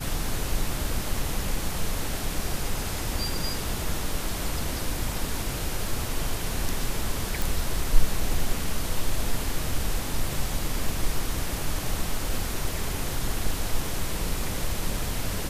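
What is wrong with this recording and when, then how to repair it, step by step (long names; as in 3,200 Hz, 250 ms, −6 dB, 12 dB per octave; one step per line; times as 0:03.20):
0:07.42: click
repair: click removal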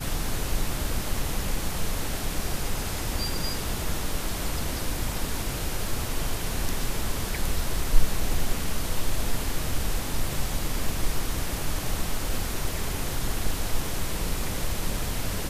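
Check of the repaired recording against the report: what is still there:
none of them is left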